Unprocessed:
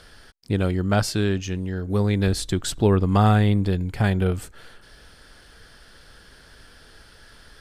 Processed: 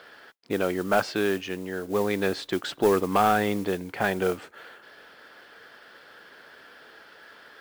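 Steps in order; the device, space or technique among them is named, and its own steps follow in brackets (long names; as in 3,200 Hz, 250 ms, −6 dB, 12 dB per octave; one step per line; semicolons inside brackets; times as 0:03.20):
carbon microphone (band-pass filter 380–2,700 Hz; soft clipping −15.5 dBFS, distortion −15 dB; noise that follows the level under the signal 20 dB)
level +4 dB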